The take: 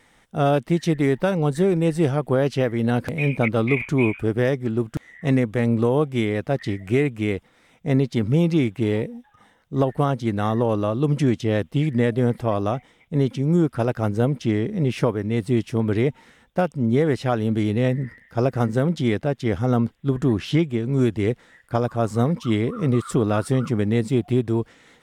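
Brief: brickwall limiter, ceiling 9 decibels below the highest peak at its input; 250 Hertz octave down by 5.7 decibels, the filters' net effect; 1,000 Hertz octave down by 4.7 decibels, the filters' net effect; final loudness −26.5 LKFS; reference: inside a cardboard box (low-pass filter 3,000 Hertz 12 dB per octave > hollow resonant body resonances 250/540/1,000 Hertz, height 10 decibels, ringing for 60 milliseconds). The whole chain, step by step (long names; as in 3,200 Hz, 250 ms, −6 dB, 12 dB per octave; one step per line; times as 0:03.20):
parametric band 250 Hz −7.5 dB
parametric band 1,000 Hz −6.5 dB
brickwall limiter −18.5 dBFS
low-pass filter 3,000 Hz 12 dB per octave
hollow resonant body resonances 250/540/1,000 Hz, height 10 dB, ringing for 60 ms
level −0.5 dB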